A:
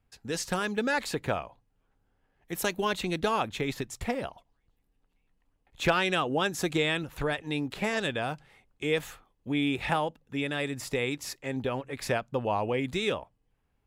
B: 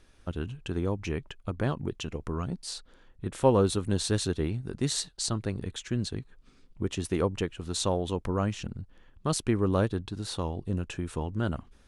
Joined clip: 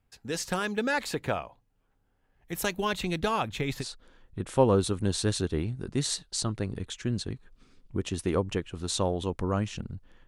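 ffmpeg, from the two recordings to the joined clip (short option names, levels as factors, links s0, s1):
-filter_complex "[0:a]asplit=3[s0][s1][s2];[s0]afade=t=out:st=2.28:d=0.02[s3];[s1]asubboost=boost=2:cutoff=190,afade=t=in:st=2.28:d=0.02,afade=t=out:st=3.87:d=0.02[s4];[s2]afade=t=in:st=3.87:d=0.02[s5];[s3][s4][s5]amix=inputs=3:normalize=0,apad=whole_dur=10.27,atrim=end=10.27,atrim=end=3.87,asetpts=PTS-STARTPTS[s6];[1:a]atrim=start=2.65:end=9.13,asetpts=PTS-STARTPTS[s7];[s6][s7]acrossfade=d=0.08:c1=tri:c2=tri"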